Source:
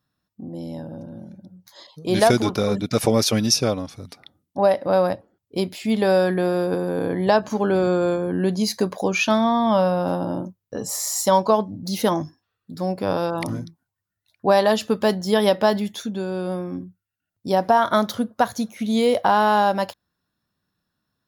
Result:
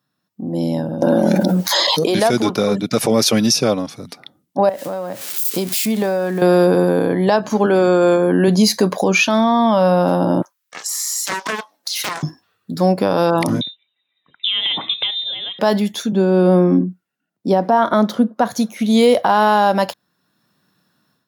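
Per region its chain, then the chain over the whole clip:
1.02–2.15 s: high-pass 380 Hz + level flattener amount 100%
4.69–6.42 s: zero-crossing glitches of -22.5 dBFS + compression 12:1, threshold -29 dBFS + three bands expanded up and down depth 70%
7.66–8.48 s: high-pass 250 Hz 6 dB/octave + band-stop 4.1 kHz, Q 7.8
10.42–12.23 s: high-pass 1.2 kHz 24 dB/octave + compression, threshold -33 dBFS + loudspeaker Doppler distortion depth 0.46 ms
13.61–15.59 s: compression 20:1, threshold -30 dBFS + frequency inversion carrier 3.8 kHz
16.12–18.51 s: high-pass 180 Hz 24 dB/octave + tilt EQ -2.5 dB/octave
whole clip: high-pass 130 Hz 24 dB/octave; level rider; loudness maximiser +7 dB; trim -4 dB

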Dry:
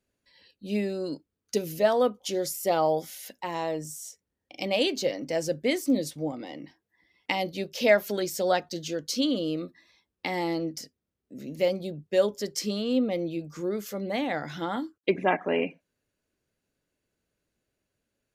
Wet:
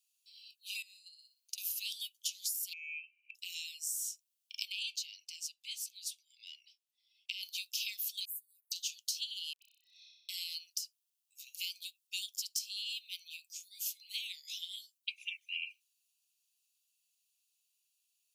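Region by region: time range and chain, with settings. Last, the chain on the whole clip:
0.82–1.58 s: peaking EQ 2 kHz +12.5 dB 0.32 oct + flutter echo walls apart 10.4 m, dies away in 0.41 s + compression 16:1, threshold -41 dBFS
2.73–3.35 s: frequency inversion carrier 2.9 kHz + compression 3:1, threshold -38 dBFS + comb of notches 690 Hz
4.72–7.43 s: low-pass 3.6 kHz 6 dB/octave + transient shaper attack +3 dB, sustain -1 dB + compression 2:1, threshold -34 dBFS
8.25–8.72 s: inverse Chebyshev band-stop 450–5900 Hz + comb 6.4 ms, depth 67% + compression 10:1, threshold -47 dBFS
9.53–10.29 s: spectral contrast enhancement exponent 1.8 + phase dispersion highs, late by 94 ms, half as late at 1.2 kHz + flutter echo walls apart 5.3 m, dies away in 0.89 s
whole clip: steep high-pass 2.5 kHz 96 dB/octave; treble shelf 5.6 kHz +10.5 dB; compression 10:1, threshold -35 dBFS; trim +1 dB

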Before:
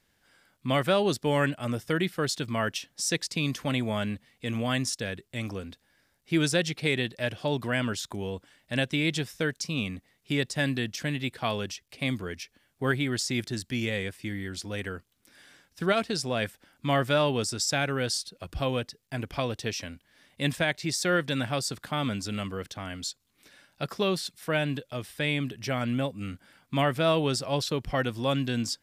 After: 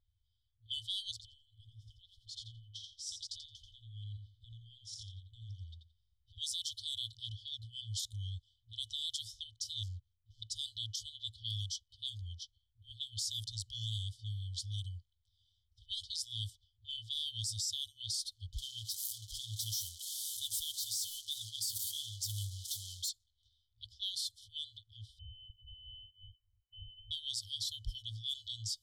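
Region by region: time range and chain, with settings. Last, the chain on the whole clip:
1.11–6.38 s: compression 8:1, threshold -36 dBFS + feedback delay 86 ms, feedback 23%, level -4.5 dB
9.83–10.42 s: median filter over 15 samples + dynamic bell 3.9 kHz, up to -4 dB, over -55 dBFS, Q 1.7 + compression 3:1, threshold -30 dBFS
18.53–23.09 s: zero-crossing glitches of -25 dBFS + flange 1.4 Hz, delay 4.6 ms, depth 5.7 ms, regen +28%
25.19–27.11 s: compression 3:1, threshold -27 dBFS + frequency inversion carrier 2.9 kHz
whole clip: FFT band-reject 110–3000 Hz; level-controlled noise filter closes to 1.3 kHz, open at -32 dBFS; peak limiter -27.5 dBFS

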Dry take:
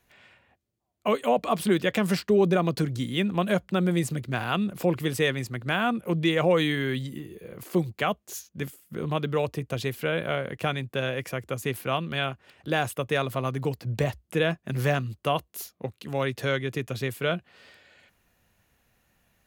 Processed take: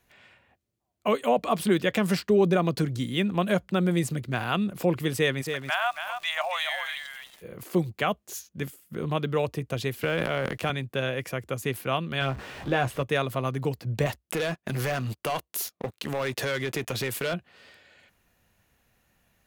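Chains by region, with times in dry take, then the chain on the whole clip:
5.41–7.41 s: steep high-pass 610 Hz 96 dB/octave + delay 277 ms -7.5 dB + crackle 370 per s -40 dBFS
10.03–10.70 s: companding laws mixed up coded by A + transient shaper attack -2 dB, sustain +10 dB + three bands compressed up and down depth 40%
12.20–13.03 s: jump at every zero crossing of -34.5 dBFS + low-pass 2.5 kHz 6 dB/octave + doubling 15 ms -7.5 dB
14.06–17.34 s: bass shelf 250 Hz -8.5 dB + waveshaping leveller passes 3 + compression 4:1, threshold -27 dBFS
whole clip: none

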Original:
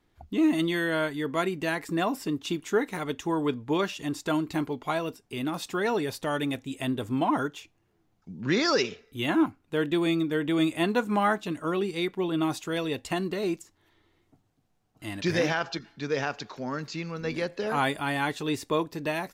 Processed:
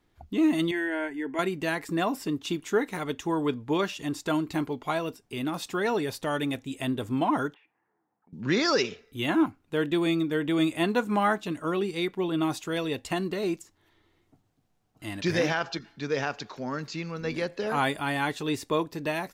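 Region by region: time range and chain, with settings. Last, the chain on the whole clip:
0.71–1.39 s: distance through air 55 m + static phaser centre 800 Hz, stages 8
7.54–8.33 s: level-controlled noise filter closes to 890 Hz, open at -40.5 dBFS + cabinet simulation 340–2400 Hz, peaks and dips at 360 Hz -6 dB, 610 Hz -7 dB, 880 Hz +7 dB, 1.8 kHz +8 dB + compression 8:1, threshold -58 dBFS
whole clip: none

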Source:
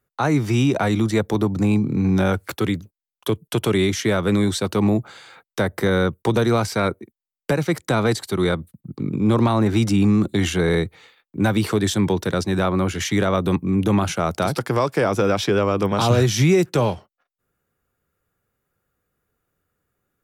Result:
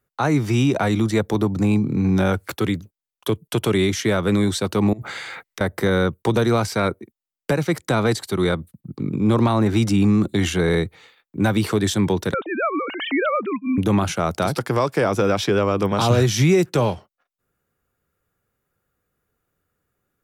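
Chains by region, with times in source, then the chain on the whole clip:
4.93–5.61 s: peaking EQ 2 kHz +9.5 dB 0.4 oct + compressor with a negative ratio -32 dBFS
12.34–13.78 s: formants replaced by sine waves + tilt EQ +2.5 dB/octave
whole clip: none

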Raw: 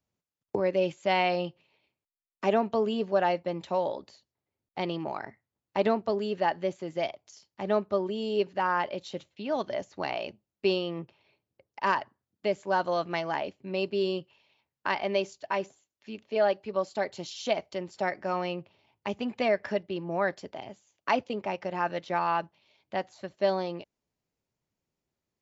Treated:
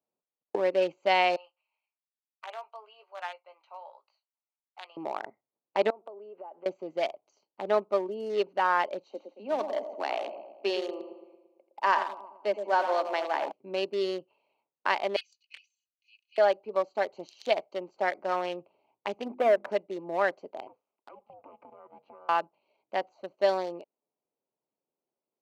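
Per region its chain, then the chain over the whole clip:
1.36–4.97 s: Bessel high-pass 1.5 kHz, order 4 + distance through air 150 m + doubling 19 ms -9 dB
5.90–6.66 s: compression 16:1, threshold -37 dBFS + band-pass 370–2100 Hz
9.04–13.52 s: rippled Chebyshev high-pass 200 Hz, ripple 3 dB + two-band feedback delay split 910 Hz, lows 113 ms, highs 85 ms, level -7 dB
15.16–16.38 s: steep high-pass 2.4 kHz 72 dB/octave + comb 2.4 ms, depth 88%
19.26–19.70 s: low-pass 1.3 kHz + waveshaping leveller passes 1 + hum notches 50/100/150/200/250/300/350 Hz
20.67–22.29 s: low-pass 2.3 kHz + compression 8:1, threshold -42 dBFS + ring modulator 310 Hz
whole clip: local Wiener filter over 25 samples; high-pass 420 Hz 12 dB/octave; trim +3 dB

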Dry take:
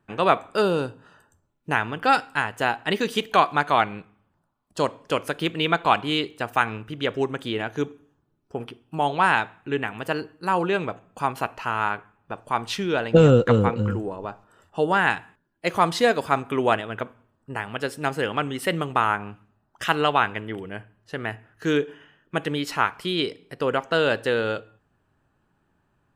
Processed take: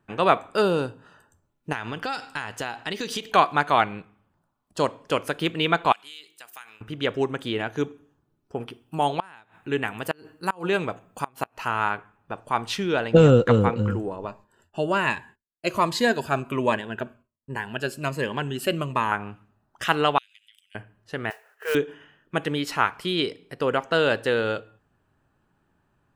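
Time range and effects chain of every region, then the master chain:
1.72–3.31 s: peaking EQ 5.2 kHz +9 dB 1.3 oct + compression 5:1, threshold -26 dBFS
5.92–6.81 s: differentiator + de-hum 52.12 Hz, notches 7 + compression 4:1, threshold -38 dBFS
8.70–11.68 s: treble shelf 7.9 kHz +10.5 dB + inverted gate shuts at -10 dBFS, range -28 dB
14.27–19.12 s: expander -54 dBFS + rippled EQ curve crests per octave 1.4, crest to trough 7 dB + Shepard-style phaser falling 1.3 Hz
20.18–20.75 s: inverse Chebyshev high-pass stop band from 980 Hz, stop band 60 dB + compression 8:1, threshold -48 dBFS
21.30–21.75 s: brick-wall FIR band-pass 380–3200 Hz + modulation noise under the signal 14 dB
whole clip: none

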